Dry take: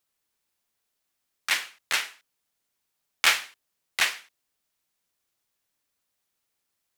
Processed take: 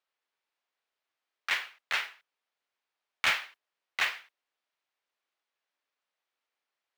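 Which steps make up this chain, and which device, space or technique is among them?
carbon microphone (BPF 480–3200 Hz; soft clip -17.5 dBFS, distortion -13 dB; modulation noise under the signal 23 dB); gain -1 dB

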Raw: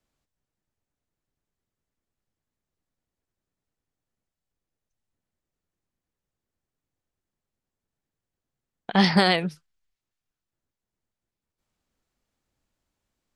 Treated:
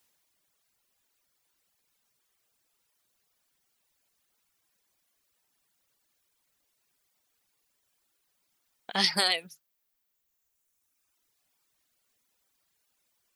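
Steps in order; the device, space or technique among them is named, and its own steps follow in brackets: turntable without a phono preamp (RIAA curve recording; white noise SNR 31 dB); reverb removal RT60 1.9 s; 8.93–9.51 high shelf 5200 Hz +6 dB; gain -7.5 dB

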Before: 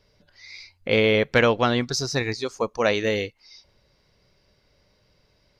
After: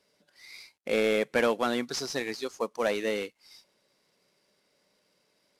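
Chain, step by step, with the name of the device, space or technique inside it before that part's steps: early wireless headset (HPF 190 Hz 24 dB/oct; CVSD 64 kbps); gain -5.5 dB

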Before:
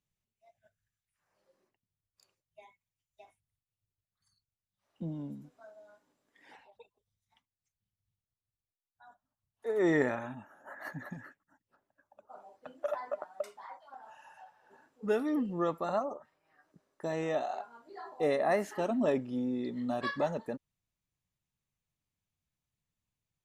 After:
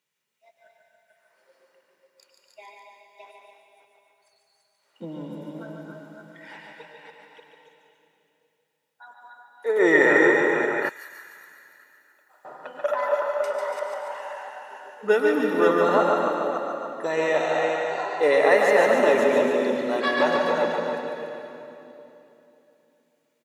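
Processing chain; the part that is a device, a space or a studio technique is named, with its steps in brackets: reverse delay 0.296 s, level -4 dB; HPF 140 Hz; stadium PA (HPF 250 Hz 12 dB/oct; bell 2000 Hz +6.5 dB 1.8 oct; loudspeakers at several distances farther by 50 m -5 dB, 98 m -8 dB; reverb RT60 3.1 s, pre-delay 96 ms, DRR 4 dB); comb 2.1 ms, depth 36%; 10.89–12.45 differentiator; gain +7 dB

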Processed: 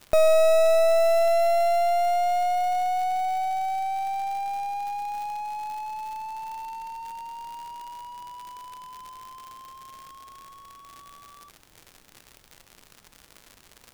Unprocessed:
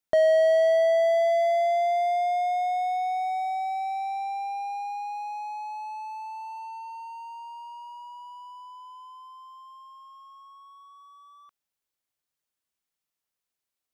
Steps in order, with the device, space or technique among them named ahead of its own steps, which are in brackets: record under a worn stylus (tracing distortion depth 0.13 ms; crackle 130/s -35 dBFS; pink noise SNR 34 dB); gain +2 dB

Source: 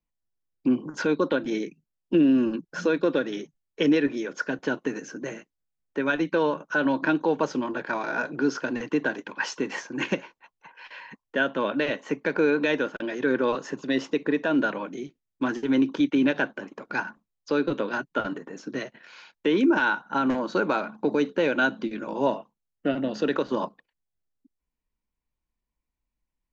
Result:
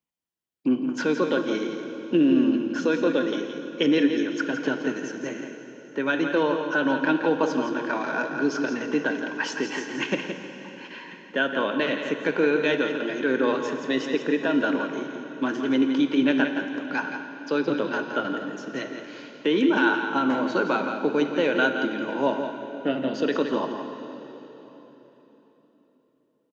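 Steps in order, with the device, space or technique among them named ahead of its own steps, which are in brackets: PA in a hall (HPF 140 Hz; bell 3100 Hz +5 dB 0.21 oct; echo 0.169 s -8 dB; reverb RT60 3.9 s, pre-delay 33 ms, DRR 7.5 dB)

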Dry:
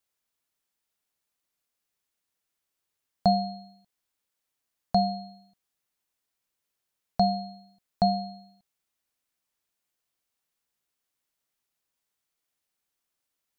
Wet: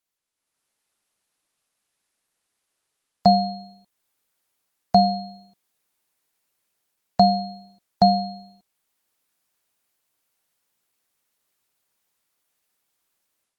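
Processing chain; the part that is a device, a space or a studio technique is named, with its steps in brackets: video call (HPF 110 Hz 6 dB/oct; AGC gain up to 11 dB; gain -1.5 dB; Opus 20 kbps 48000 Hz)

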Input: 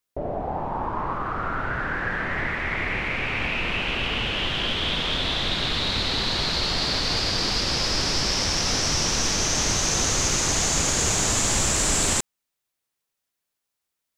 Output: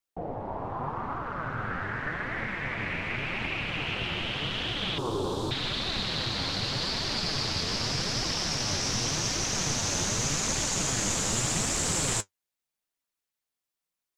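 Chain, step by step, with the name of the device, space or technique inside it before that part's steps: alien voice (ring modulator 120 Hz; flange 0.85 Hz, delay 2.5 ms, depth 9.2 ms, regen +50%); 4.98–5.51 EQ curve 200 Hz 0 dB, 410 Hz +14 dB, 670 Hz -1 dB, 1000 Hz +9 dB, 2000 Hz -23 dB, 8100 Hz +7 dB; gain +1 dB

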